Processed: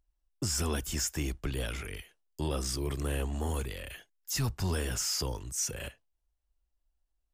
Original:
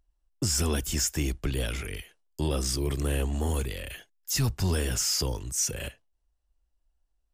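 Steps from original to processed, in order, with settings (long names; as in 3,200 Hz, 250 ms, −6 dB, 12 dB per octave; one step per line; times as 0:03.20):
dynamic equaliser 1,100 Hz, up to +4 dB, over −47 dBFS, Q 0.92
level −5 dB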